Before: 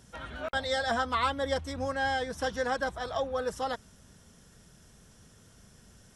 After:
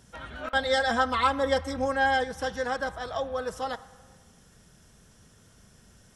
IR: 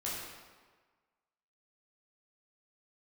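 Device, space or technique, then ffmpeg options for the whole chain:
filtered reverb send: -filter_complex "[0:a]asplit=2[a][b];[b]highpass=540,lowpass=3.4k[c];[1:a]atrim=start_sample=2205[d];[c][d]afir=irnorm=-1:irlink=0,volume=-15.5dB[e];[a][e]amix=inputs=2:normalize=0,asettb=1/sr,asplit=3[f][g][h];[f]atrim=end=0.444[i];[g]atrim=start=0.44:end=2.24,asetpts=PTS-STARTPTS,afade=t=in:d=0.004:c=qsin,afade=t=out:st=1.796:d=0.004:c=qsin,aecho=1:1:3.8:0.89,atrim=end_sample=79380[j];[h]atrim=start=2.236[k];[i][j]acrossfade=d=0.004:c1=hsin:c2=qsin[l];[l][k]acrossfade=d=0.004:c1=qsin:c2=hsin"

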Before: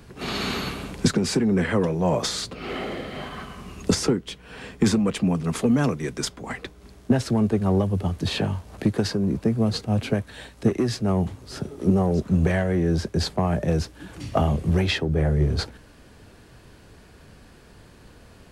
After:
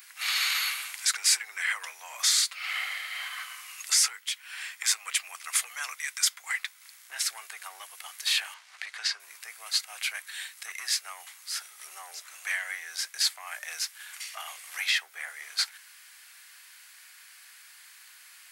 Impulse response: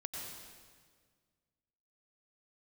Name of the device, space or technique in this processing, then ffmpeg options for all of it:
laptop speaker: -filter_complex "[0:a]asettb=1/sr,asplit=3[a][b][c];[a]atrim=end=8.544[d];[b]atrim=start=8.54:end=9.2,asetpts=PTS-STARTPTS,afade=t=in:d=0.004:c=qsin,afade=t=out:st=0.656:d=0.004:c=qsin,lowpass=5.1k[e];[c]atrim=start=9.196[f];[d][e]acrossfade=d=0.004:c1=hsin:c2=qsin[g];[g][f]acrossfade=d=0.004:c1=qsin:c2=hsin,highpass=f=270:w=0.5412,highpass=f=270:w=1.3066,equalizer=f=740:t=o:w=0.33:g=5,equalizer=f=2.1k:t=o:w=0.34:g=7,alimiter=limit=-18.5dB:level=0:latency=1:release=12,highpass=f=1.3k:w=0.5412,highpass=f=1.3k:w=1.3066,aemphasis=mode=production:type=bsi"

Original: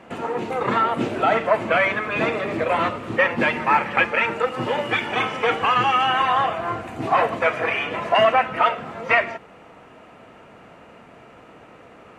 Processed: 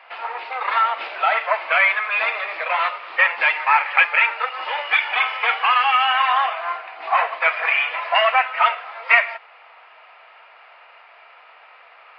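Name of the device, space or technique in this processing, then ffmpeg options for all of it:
musical greeting card: -filter_complex "[0:a]asettb=1/sr,asplit=3[a][b][c];[a]atrim=end=6.774[d];[b]atrim=start=6.77:end=7.41,asetpts=PTS-STARTPTS,afade=t=in:d=0.004:c=qsin,afade=t=out:st=0.636:d=0.004:c=qsin,highshelf=f=5.8k:g=-10[e];[c]atrim=start=7.406[f];[d][e]acrossfade=d=0.004:c1=hsin:c2=qsin[g];[g][f]acrossfade=d=0.004:c1=qsin:c2=hsin,aresample=11025,aresample=44100,highpass=f=760:w=0.5412,highpass=f=760:w=1.3066,equalizer=f=2.3k:t=o:w=0.46:g=5,volume=2dB"

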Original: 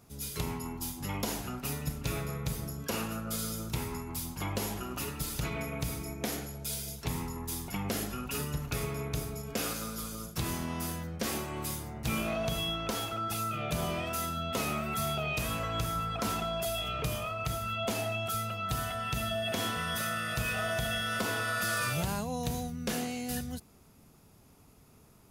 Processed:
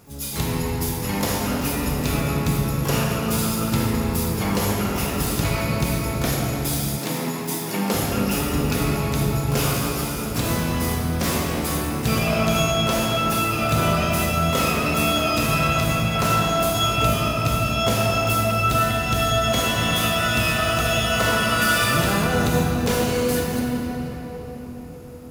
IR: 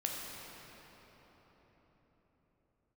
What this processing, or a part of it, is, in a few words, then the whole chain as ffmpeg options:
shimmer-style reverb: -filter_complex "[0:a]asplit=2[a][b];[b]asetrate=88200,aresample=44100,atempo=0.5,volume=-7dB[c];[a][c]amix=inputs=2:normalize=0[d];[1:a]atrim=start_sample=2205[e];[d][e]afir=irnorm=-1:irlink=0,asettb=1/sr,asplit=3[f][g][h];[f]atrim=end=6.984[i];[g]atrim=start=6.98:end=7.94,asetpts=PTS-STARTPTS,afade=t=in:d=0.004:c=qsin,afade=t=out:st=0.956:d=0.004:c=qsin,highpass=f=180:w=0.5412,highpass=f=180:w=1.3066[j];[h]atrim=start=7.936[k];[i][j]acrossfade=d=0.004:c1=hsin:c2=qsin[l];[l][k]acrossfade=d=0.004:c1=qsin:c2=hsin,volume=8.5dB"

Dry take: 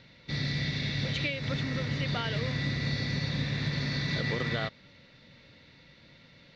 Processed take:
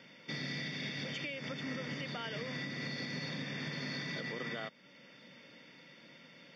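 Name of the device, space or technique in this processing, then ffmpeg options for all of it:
PA system with an anti-feedback notch: -af "highpass=f=180:w=0.5412,highpass=f=180:w=1.3066,asuperstop=centerf=4000:order=12:qfactor=6.1,alimiter=level_in=7dB:limit=-24dB:level=0:latency=1:release=425,volume=-7dB,volume=1dB"

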